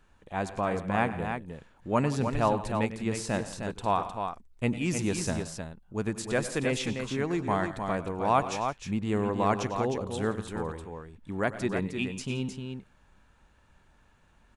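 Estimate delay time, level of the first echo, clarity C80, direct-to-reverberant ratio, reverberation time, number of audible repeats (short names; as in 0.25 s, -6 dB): 97 ms, -15.5 dB, none, none, none, 3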